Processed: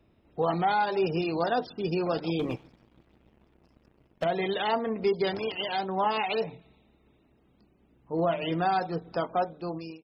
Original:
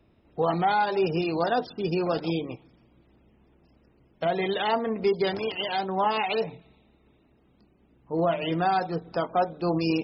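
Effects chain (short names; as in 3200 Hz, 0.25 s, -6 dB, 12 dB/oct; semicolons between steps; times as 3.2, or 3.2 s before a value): ending faded out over 0.74 s; 2.39–4.24 sample leveller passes 2; gain -2 dB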